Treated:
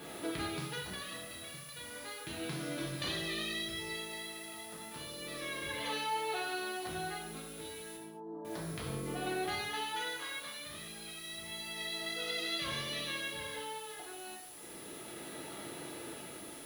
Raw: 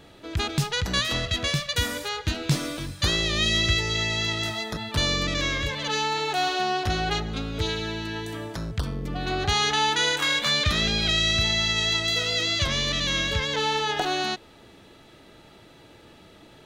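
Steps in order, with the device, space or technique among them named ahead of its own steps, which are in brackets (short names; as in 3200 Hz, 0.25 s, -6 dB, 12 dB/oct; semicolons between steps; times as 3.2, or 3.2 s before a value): medium wave at night (BPF 160–4000 Hz; compressor 10:1, threshold -40 dBFS, peak gain reduction 20 dB; tremolo 0.32 Hz, depth 73%; whine 10000 Hz -63 dBFS; white noise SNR 14 dB); 7.96–8.45 elliptic band-pass 160–1000 Hz, stop band 40 dB; non-linear reverb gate 0.26 s falling, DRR -3.5 dB; gain +1 dB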